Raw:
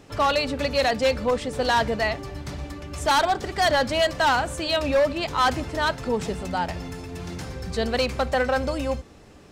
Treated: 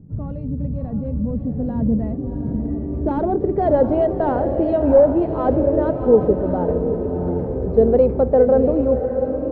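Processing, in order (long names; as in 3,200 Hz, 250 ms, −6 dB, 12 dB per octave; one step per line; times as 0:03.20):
low-pass filter sweep 170 Hz → 440 Hz, 0:01.13–0:03.65
on a send: feedback delay with all-pass diffusion 703 ms, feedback 41%, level −7 dB
on the sum: level +6.5 dB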